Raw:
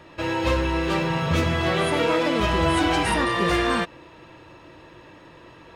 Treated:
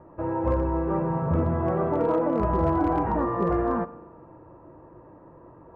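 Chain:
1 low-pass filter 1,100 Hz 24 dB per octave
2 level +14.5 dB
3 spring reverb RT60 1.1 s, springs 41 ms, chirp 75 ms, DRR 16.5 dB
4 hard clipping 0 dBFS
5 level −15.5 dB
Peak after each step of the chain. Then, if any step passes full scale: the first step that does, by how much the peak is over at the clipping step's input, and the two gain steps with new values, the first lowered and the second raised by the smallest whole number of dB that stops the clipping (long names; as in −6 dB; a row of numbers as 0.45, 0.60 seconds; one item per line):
−11.0, +3.5, +3.5, 0.0, −15.5 dBFS
step 2, 3.5 dB
step 2 +10.5 dB, step 5 −11.5 dB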